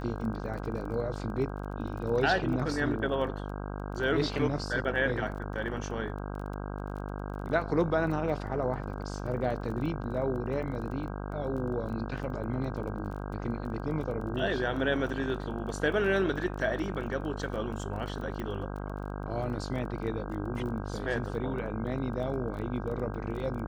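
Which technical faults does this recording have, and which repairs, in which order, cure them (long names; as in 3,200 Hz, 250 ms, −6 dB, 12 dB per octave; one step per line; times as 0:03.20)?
mains buzz 50 Hz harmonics 32 −37 dBFS
surface crackle 21 per second −39 dBFS
0:18.40: click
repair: click removal
hum removal 50 Hz, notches 32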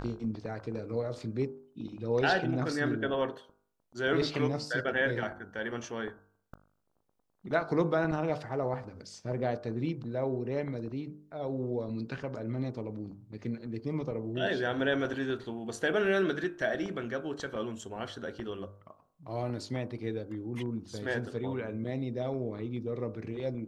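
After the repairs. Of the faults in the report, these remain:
none of them is left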